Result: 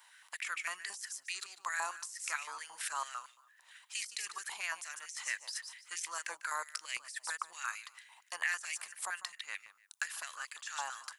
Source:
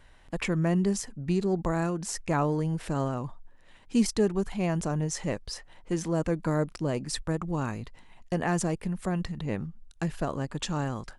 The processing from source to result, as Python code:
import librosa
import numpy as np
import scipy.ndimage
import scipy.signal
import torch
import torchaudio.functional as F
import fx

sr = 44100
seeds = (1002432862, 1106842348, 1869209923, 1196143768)

y = np.diff(x, prepend=0.0)
y = fx.echo_feedback(y, sr, ms=148, feedback_pct=22, wet_db=-16.0)
y = fx.over_compress(y, sr, threshold_db=-45.0, ratio=-1.0)
y = fx.filter_held_highpass(y, sr, hz=8.9, low_hz=920.0, high_hz=2200.0)
y = y * librosa.db_to_amplitude(4.5)